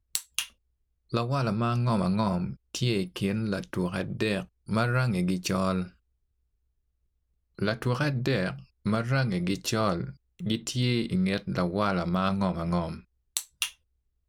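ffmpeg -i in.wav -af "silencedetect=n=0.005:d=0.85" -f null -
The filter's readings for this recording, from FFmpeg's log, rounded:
silence_start: 5.90
silence_end: 7.59 | silence_duration: 1.69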